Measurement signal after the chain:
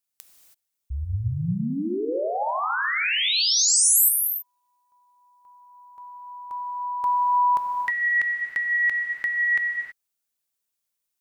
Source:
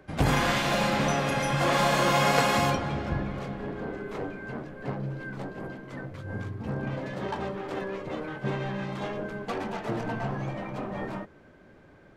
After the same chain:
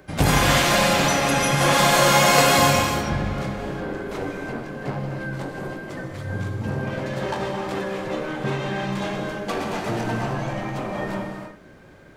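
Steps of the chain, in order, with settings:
high-shelf EQ 4,700 Hz +10 dB
reverb whose tail is shaped and stops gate 350 ms flat, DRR 2 dB
level +4 dB

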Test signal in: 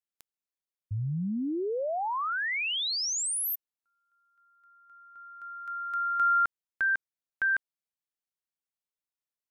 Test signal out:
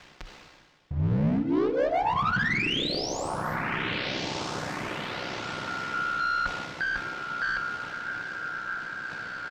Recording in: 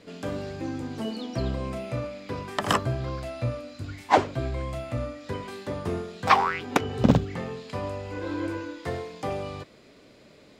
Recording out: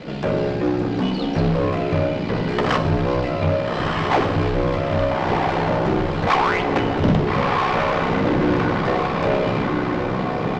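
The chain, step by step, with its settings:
high-shelf EQ 9,400 Hz −8 dB
comb filter 5.5 ms, depth 79%
feedback delay with all-pass diffusion 1,315 ms, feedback 55%, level −7 dB
in parallel at −7 dB: fuzz pedal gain 32 dB, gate −38 dBFS
on the sum: ring modulation 32 Hz
power curve on the samples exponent 0.5
high-frequency loss of the air 180 metres
reversed playback
upward compression, threshold −24 dBFS
reversed playback
feedback delay network reverb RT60 1.3 s, low-frequency decay 1.1×, high-frequency decay 0.95×, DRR 8.5 dB
level −6 dB

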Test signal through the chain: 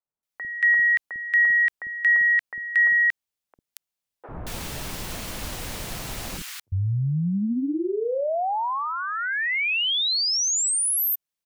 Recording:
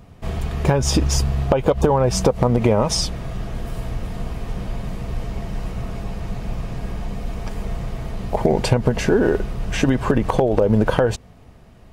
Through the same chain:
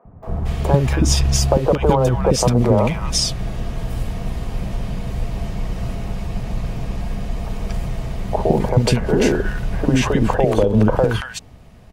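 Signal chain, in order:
three-band delay without the direct sound mids, lows, highs 50/230 ms, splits 370/1,300 Hz
level +3 dB

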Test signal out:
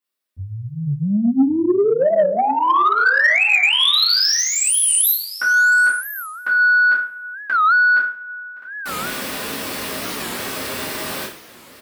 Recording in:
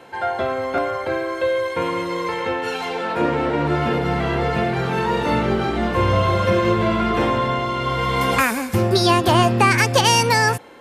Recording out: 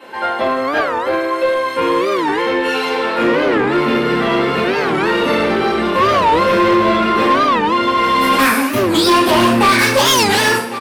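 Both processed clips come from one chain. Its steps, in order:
wavefolder on the positive side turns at −11.5 dBFS
high-pass filter 190 Hz 12 dB per octave
parametric band 780 Hz −7.5 dB 0.23 octaves
single-tap delay 1,107 ms −17 dB
coupled-rooms reverb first 0.45 s, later 2.6 s, from −27 dB, DRR −9.5 dB
soft clipping −7 dBFS
parametric band 6,700 Hz −7 dB 0.37 octaves
wow of a warped record 45 rpm, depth 250 cents

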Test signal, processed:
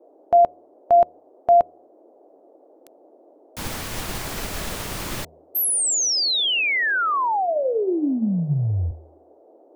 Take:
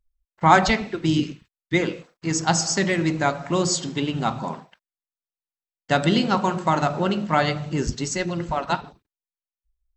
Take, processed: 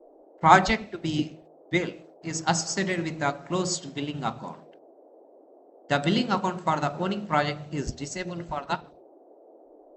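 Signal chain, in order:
hum removal 79.42 Hz, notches 9
noise in a band 290–710 Hz −43 dBFS
expander for the loud parts 1.5 to 1, over −31 dBFS

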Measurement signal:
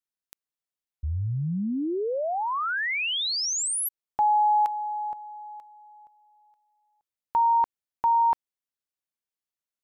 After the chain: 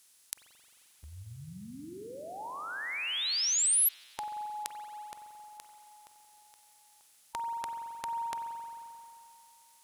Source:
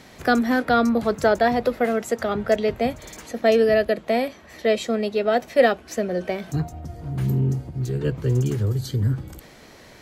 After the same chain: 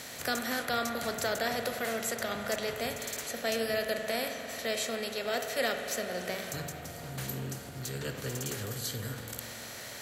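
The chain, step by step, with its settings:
compressor on every frequency bin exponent 0.6
first-order pre-emphasis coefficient 0.9
spring reverb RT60 2.8 s, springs 44 ms, chirp 55 ms, DRR 5 dB

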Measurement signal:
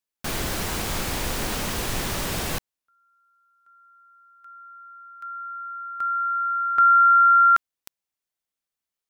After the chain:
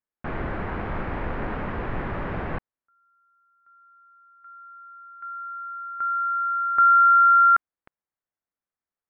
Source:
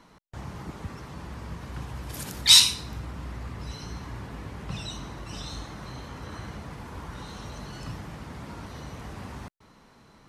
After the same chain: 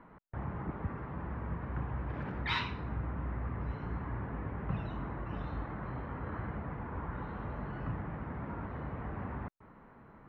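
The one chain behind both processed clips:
low-pass filter 1,900 Hz 24 dB per octave

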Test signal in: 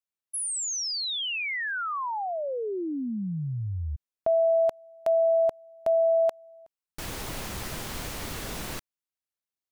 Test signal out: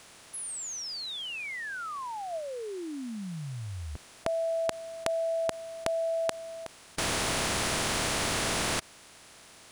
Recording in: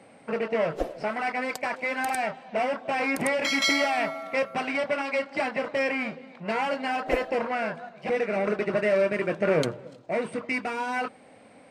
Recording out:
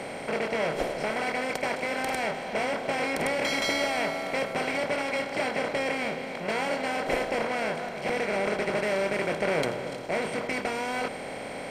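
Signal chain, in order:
compressor on every frequency bin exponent 0.4
level −8 dB

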